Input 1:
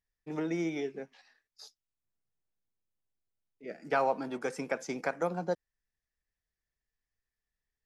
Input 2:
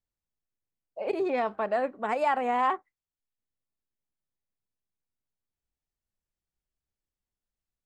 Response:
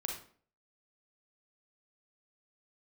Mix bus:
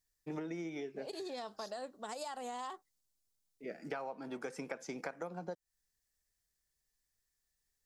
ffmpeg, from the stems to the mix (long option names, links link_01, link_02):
-filter_complex "[0:a]volume=0.5dB[link_01];[1:a]highshelf=frequency=6100:gain=-9.5,acompressor=threshold=-27dB:ratio=6,aexciter=amount=13.8:drive=7.8:freq=3700,volume=-11dB[link_02];[link_01][link_02]amix=inputs=2:normalize=0,acompressor=threshold=-38dB:ratio=10"